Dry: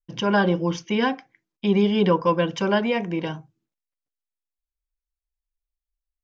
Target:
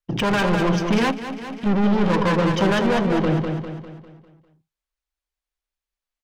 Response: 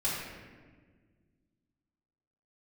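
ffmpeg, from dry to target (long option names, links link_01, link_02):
-filter_complex "[0:a]afwtdn=0.0447,lowshelf=frequency=250:gain=8,acrossover=split=170|3000[link_01][link_02][link_03];[link_02]acompressor=threshold=-27dB:ratio=4[link_04];[link_01][link_04][link_03]amix=inputs=3:normalize=0,asplit=2[link_05][link_06];[link_06]highpass=frequency=720:poles=1,volume=31dB,asoftclip=type=tanh:threshold=-12.5dB[link_07];[link_05][link_07]amix=inputs=2:normalize=0,lowpass=frequency=4000:poles=1,volume=-6dB,flanger=delay=0.3:depth=5.6:regen=76:speed=0.6:shape=triangular,aecho=1:1:200|400|600|800|1000|1200:0.562|0.259|0.119|0.0547|0.0252|0.0116,asplit=2[link_08][link_09];[1:a]atrim=start_sample=2205,atrim=end_sample=3087[link_10];[link_09][link_10]afir=irnorm=-1:irlink=0,volume=-22dB[link_11];[link_08][link_11]amix=inputs=2:normalize=0,asplit=3[link_12][link_13][link_14];[link_12]afade=type=out:start_time=1.1:duration=0.02[link_15];[link_13]acompressor=threshold=-30dB:ratio=6,afade=type=in:start_time=1.1:duration=0.02,afade=type=out:start_time=1.65:duration=0.02[link_16];[link_14]afade=type=in:start_time=1.65:duration=0.02[link_17];[link_15][link_16][link_17]amix=inputs=3:normalize=0,volume=3.5dB"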